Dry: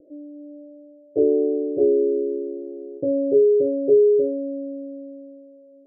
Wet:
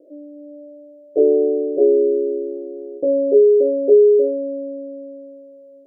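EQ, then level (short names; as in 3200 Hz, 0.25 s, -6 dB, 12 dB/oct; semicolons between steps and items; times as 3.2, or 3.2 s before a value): HPF 410 Hz 12 dB/oct; +7.0 dB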